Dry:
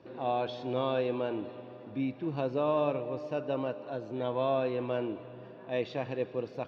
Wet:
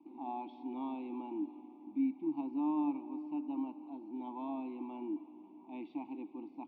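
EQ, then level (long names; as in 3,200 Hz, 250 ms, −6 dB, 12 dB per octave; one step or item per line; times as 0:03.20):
formant filter u
high-frequency loss of the air 130 metres
phaser with its sweep stopped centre 450 Hz, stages 6
+6.5 dB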